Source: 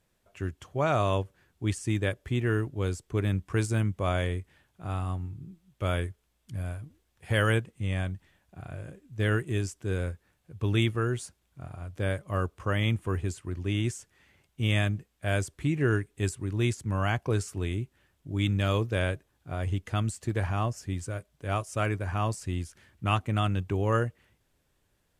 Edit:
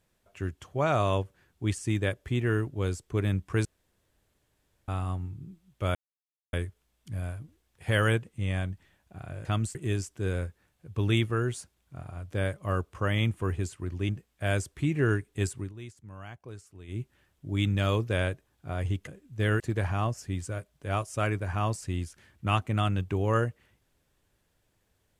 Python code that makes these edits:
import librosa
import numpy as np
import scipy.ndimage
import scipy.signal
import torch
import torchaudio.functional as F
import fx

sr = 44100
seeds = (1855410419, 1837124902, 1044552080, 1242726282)

y = fx.edit(x, sr, fx.room_tone_fill(start_s=3.65, length_s=1.23),
    fx.insert_silence(at_s=5.95, length_s=0.58),
    fx.swap(start_s=8.87, length_s=0.53, other_s=19.89, other_length_s=0.3),
    fx.cut(start_s=13.74, length_s=1.17),
    fx.fade_down_up(start_s=16.41, length_s=1.42, db=-16.5, fade_s=0.14), tone=tone)